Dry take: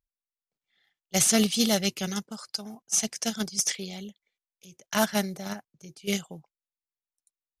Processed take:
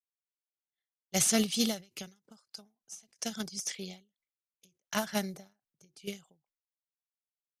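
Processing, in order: expander -58 dBFS; ending taper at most 200 dB/s; gain -4.5 dB

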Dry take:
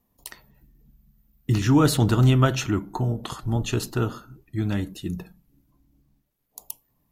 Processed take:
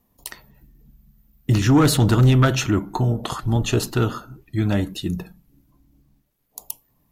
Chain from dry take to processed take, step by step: sine folder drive 5 dB, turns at -5.5 dBFS; 2.77–5.05 LFO bell 2 Hz 560–4300 Hz +7 dB; gain -4 dB

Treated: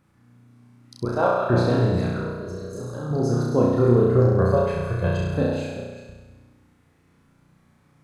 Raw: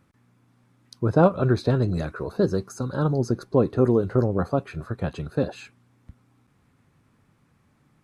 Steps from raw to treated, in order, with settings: reverse delay 0.2 s, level -10 dB; 1.05–1.5 HPF 560 Hz 12 dB/oct; 2.22–3.11 level quantiser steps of 17 dB; 4.39–5.21 comb 1.9 ms, depth 99%; flutter echo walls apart 5.7 m, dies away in 1.2 s; gain -2 dB

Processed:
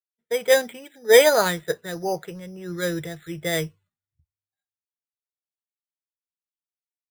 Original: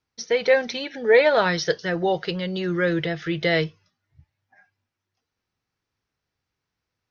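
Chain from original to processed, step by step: careless resampling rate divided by 8×, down filtered, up hold; three-band expander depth 100%; gain -3.5 dB

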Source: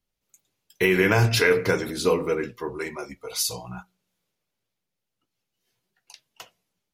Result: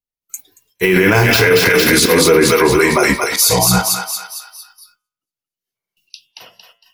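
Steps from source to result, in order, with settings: 0.83–1.45 median filter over 5 samples; high shelf 9700 Hz +10.5 dB; auto swell 0.225 s; on a send: thinning echo 0.228 s, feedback 51%, high-pass 1100 Hz, level -4 dB; on the sum: gate with hold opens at -56 dBFS; in parallel at +2.5 dB: negative-ratio compressor -28 dBFS; 5.78–6.28 on the sum: spectral repair 370–2400 Hz after; spectral noise reduction 18 dB; de-hum 113.7 Hz, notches 32; maximiser +15.5 dB; gain -1 dB

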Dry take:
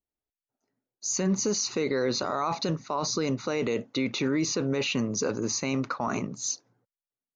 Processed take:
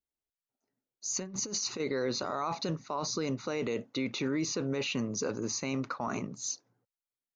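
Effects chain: 1.15–1.8 negative-ratio compressor -30 dBFS, ratio -0.5; gain -5 dB

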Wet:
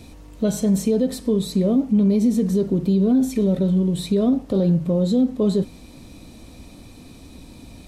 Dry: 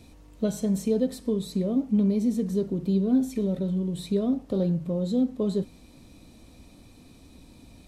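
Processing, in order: limiter -19.5 dBFS, peak gain reduction 5.5 dB; gain +8.5 dB

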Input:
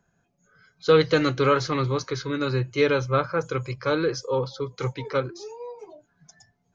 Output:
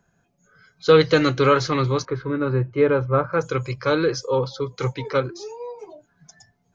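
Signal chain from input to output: 2.05–3.33 LPF 1400 Hz 12 dB/oct; gain +3.5 dB

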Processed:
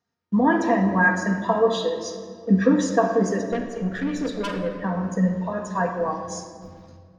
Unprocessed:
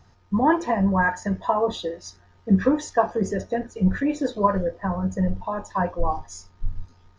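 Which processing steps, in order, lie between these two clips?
gate -43 dBFS, range -22 dB; HPF 210 Hz 12 dB/oct; 3.5–4.71 tube stage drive 25 dB, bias 0.45; bell 860 Hz -6.5 dB 0.75 oct; shoebox room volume 3300 m³, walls mixed, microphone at 1.7 m; maximiser +8 dB; gain -6 dB

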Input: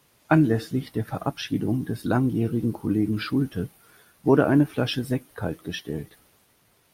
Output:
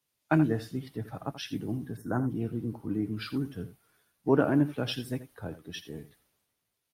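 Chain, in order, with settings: echo 83 ms -13 dB; spectral gain 1.97–2.3, 2000–5300 Hz -26 dB; three-band expander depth 40%; gain -8 dB

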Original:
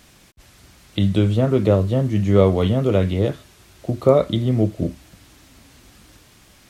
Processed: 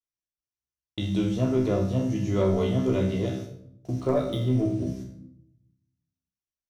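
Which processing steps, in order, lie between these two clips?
gate -37 dBFS, range -47 dB; bell 5800 Hz +13 dB 0.34 oct; resonator 64 Hz, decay 0.43 s, harmonics all, mix 90%; soft clip -13.5 dBFS, distortion -21 dB; on a send at -5 dB: reverb RT60 0.75 s, pre-delay 3 ms; 4–4.87 on the sum: decimation joined by straight lines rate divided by 3×

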